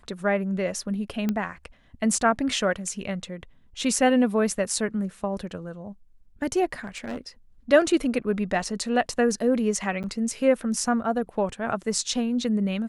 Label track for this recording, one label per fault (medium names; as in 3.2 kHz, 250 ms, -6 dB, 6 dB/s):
1.290000	1.290000	pop -13 dBFS
6.840000	7.180000	clipped -28 dBFS
10.030000	10.040000	dropout 8.7 ms